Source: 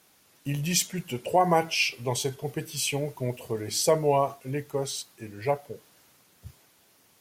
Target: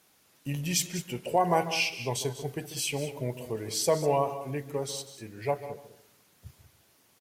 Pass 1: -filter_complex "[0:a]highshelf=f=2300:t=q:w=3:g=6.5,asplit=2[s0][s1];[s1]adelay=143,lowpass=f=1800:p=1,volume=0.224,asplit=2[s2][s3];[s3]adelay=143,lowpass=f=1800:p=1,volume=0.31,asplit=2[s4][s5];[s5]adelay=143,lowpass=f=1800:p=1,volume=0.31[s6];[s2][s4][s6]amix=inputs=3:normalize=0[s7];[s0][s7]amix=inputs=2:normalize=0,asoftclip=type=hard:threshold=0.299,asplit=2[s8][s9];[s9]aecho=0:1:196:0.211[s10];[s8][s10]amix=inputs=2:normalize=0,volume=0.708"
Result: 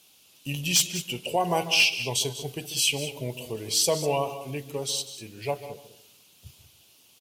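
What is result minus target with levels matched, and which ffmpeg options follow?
4 kHz band +5.5 dB
-filter_complex "[0:a]asplit=2[s0][s1];[s1]adelay=143,lowpass=f=1800:p=1,volume=0.224,asplit=2[s2][s3];[s3]adelay=143,lowpass=f=1800:p=1,volume=0.31,asplit=2[s4][s5];[s5]adelay=143,lowpass=f=1800:p=1,volume=0.31[s6];[s2][s4][s6]amix=inputs=3:normalize=0[s7];[s0][s7]amix=inputs=2:normalize=0,asoftclip=type=hard:threshold=0.299,asplit=2[s8][s9];[s9]aecho=0:1:196:0.211[s10];[s8][s10]amix=inputs=2:normalize=0,volume=0.708"

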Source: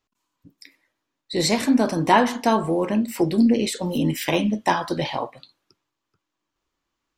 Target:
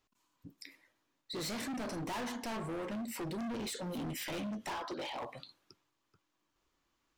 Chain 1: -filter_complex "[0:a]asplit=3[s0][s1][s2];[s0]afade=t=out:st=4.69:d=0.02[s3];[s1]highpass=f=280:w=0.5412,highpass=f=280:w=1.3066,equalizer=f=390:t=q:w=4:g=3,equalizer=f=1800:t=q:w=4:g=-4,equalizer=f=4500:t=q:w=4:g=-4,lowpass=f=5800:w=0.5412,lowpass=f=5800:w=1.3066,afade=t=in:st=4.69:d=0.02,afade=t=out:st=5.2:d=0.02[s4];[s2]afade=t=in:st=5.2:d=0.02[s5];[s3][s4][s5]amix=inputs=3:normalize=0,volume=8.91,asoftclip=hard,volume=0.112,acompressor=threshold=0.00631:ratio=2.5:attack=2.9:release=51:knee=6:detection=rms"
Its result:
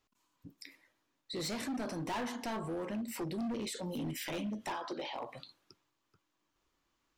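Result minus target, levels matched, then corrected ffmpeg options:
overload inside the chain: distortion -4 dB
-filter_complex "[0:a]asplit=3[s0][s1][s2];[s0]afade=t=out:st=4.69:d=0.02[s3];[s1]highpass=f=280:w=0.5412,highpass=f=280:w=1.3066,equalizer=f=390:t=q:w=4:g=3,equalizer=f=1800:t=q:w=4:g=-4,equalizer=f=4500:t=q:w=4:g=-4,lowpass=f=5800:w=0.5412,lowpass=f=5800:w=1.3066,afade=t=in:st=4.69:d=0.02,afade=t=out:st=5.2:d=0.02[s4];[s2]afade=t=in:st=5.2:d=0.02[s5];[s3][s4][s5]amix=inputs=3:normalize=0,volume=21.1,asoftclip=hard,volume=0.0473,acompressor=threshold=0.00631:ratio=2.5:attack=2.9:release=51:knee=6:detection=rms"

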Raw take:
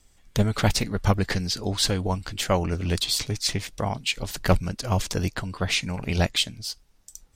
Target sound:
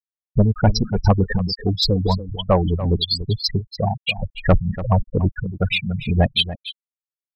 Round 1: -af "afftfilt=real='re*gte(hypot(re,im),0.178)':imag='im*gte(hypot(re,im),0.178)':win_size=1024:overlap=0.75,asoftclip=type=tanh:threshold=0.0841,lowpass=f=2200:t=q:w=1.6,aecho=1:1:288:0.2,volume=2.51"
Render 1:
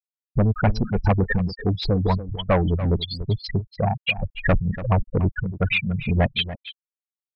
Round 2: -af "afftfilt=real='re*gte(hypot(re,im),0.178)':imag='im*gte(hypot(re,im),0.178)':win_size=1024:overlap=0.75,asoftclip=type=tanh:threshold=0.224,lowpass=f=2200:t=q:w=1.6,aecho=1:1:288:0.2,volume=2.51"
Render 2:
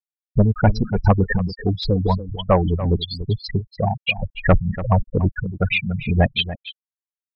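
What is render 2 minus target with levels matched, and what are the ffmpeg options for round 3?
2 kHz band +3.0 dB
-af "afftfilt=real='re*gte(hypot(re,im),0.178)':imag='im*gte(hypot(re,im),0.178)':win_size=1024:overlap=0.75,asoftclip=type=tanh:threshold=0.224,aecho=1:1:288:0.2,volume=2.51"

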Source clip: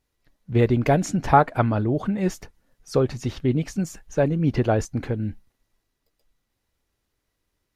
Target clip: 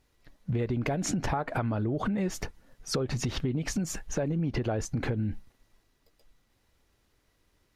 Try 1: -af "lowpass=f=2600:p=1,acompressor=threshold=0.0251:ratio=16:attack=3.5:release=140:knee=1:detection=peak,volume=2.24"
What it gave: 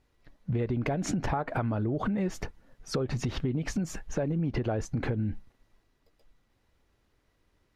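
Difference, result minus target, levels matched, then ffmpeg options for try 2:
8 kHz band -5.5 dB
-af "lowpass=f=7900:p=1,acompressor=threshold=0.0251:ratio=16:attack=3.5:release=140:knee=1:detection=peak,volume=2.24"

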